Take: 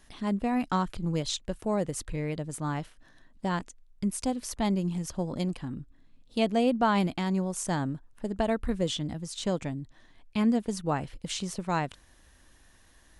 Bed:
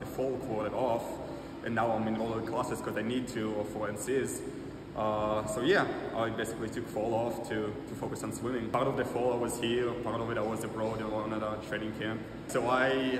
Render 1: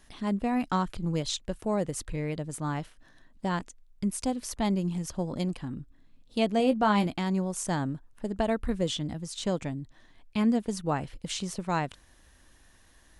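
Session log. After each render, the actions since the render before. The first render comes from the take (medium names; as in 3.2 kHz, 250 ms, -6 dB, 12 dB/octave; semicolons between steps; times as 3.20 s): 6.58–7.06 s: doubling 19 ms -9 dB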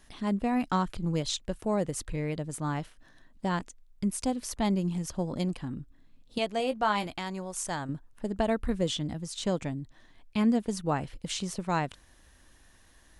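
6.38–7.89 s: peaking EQ 210 Hz -10.5 dB 2 oct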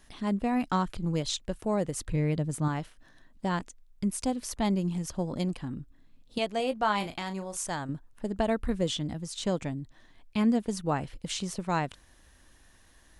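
2.07–2.68 s: peaking EQ 140 Hz +6.5 dB 2.4 oct; 6.97–7.65 s: doubling 36 ms -10 dB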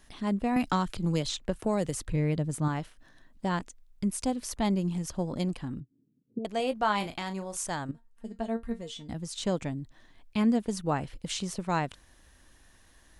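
0.56–2.01 s: three bands compressed up and down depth 70%; 5.80–6.45 s: Chebyshev band-pass 120–410 Hz, order 3; 7.91–9.09 s: feedback comb 230 Hz, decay 0.15 s, mix 90%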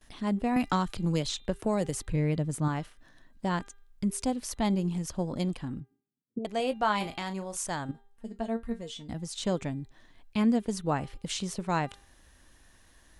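gate with hold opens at -52 dBFS; de-hum 400 Hz, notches 10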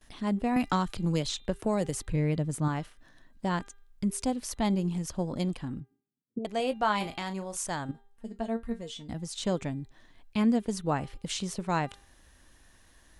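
no audible change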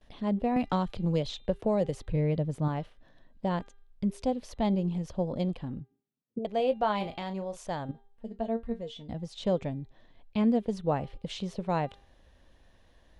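FFT filter 210 Hz 0 dB, 320 Hz -3 dB, 530 Hz +5 dB, 1.4 kHz -7 dB, 3.5 kHz -3 dB, 8.5 kHz -18 dB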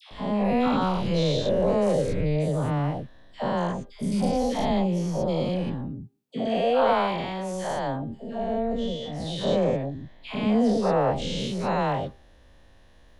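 every event in the spectrogram widened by 240 ms; phase dispersion lows, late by 113 ms, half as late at 980 Hz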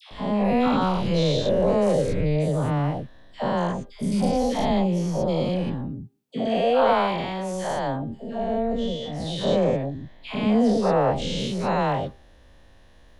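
trim +2 dB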